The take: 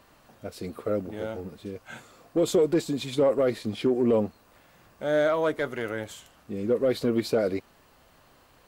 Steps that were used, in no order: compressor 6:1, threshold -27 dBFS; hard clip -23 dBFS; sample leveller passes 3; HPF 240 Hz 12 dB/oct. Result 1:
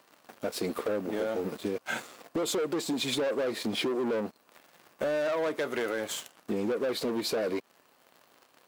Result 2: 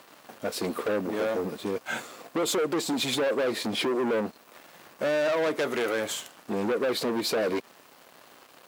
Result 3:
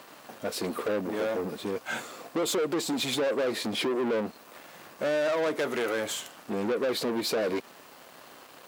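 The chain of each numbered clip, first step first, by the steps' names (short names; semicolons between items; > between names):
sample leveller > HPF > compressor > hard clip; compressor > sample leveller > hard clip > HPF; compressor > hard clip > sample leveller > HPF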